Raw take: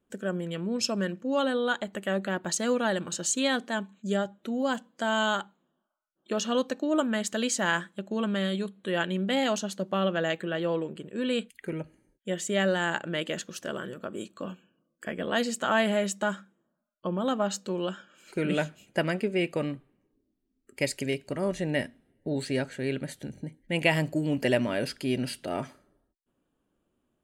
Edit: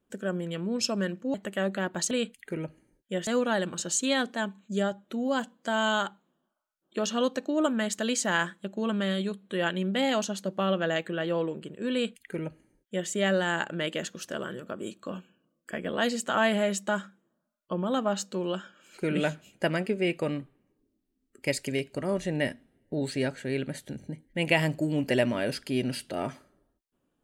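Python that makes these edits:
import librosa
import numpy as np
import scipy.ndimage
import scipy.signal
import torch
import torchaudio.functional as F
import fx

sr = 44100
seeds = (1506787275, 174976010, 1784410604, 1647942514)

y = fx.edit(x, sr, fx.cut(start_s=1.34, length_s=0.5),
    fx.duplicate(start_s=11.27, length_s=1.16, to_s=2.61), tone=tone)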